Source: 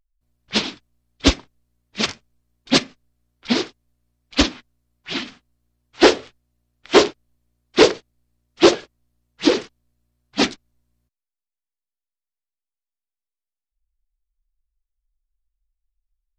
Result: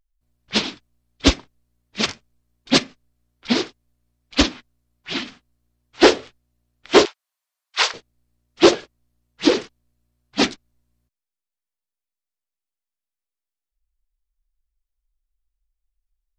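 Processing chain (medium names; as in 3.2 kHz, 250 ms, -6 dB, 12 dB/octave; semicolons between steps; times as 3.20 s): 7.05–7.94 s: high-pass 870 Hz 24 dB/octave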